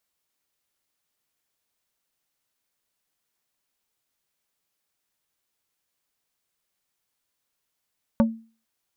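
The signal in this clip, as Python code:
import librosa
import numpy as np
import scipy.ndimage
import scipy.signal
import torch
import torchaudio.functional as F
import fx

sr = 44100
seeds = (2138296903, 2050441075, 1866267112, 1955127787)

y = fx.strike_wood(sr, length_s=0.45, level_db=-12.5, body='plate', hz=225.0, decay_s=0.37, tilt_db=5.0, modes=5)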